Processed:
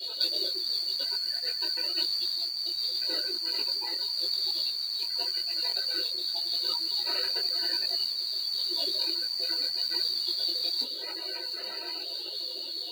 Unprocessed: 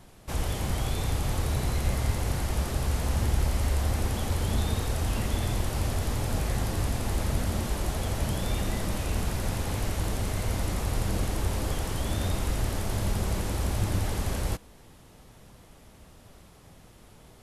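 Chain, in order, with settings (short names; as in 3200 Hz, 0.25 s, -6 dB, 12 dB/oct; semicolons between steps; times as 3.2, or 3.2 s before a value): LFO notch square 0.37 Hz 790–1900 Hz; inverted band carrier 3400 Hz; HPF 170 Hz 12 dB/oct; reverb RT60 0.20 s, pre-delay 3 ms, DRR -8.5 dB; speed mistake 33 rpm record played at 45 rpm; spectral gate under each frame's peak -15 dB strong; negative-ratio compressor -28 dBFS, ratio -1; modulation noise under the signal 19 dB; detuned doubles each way 31 cents; gain +1 dB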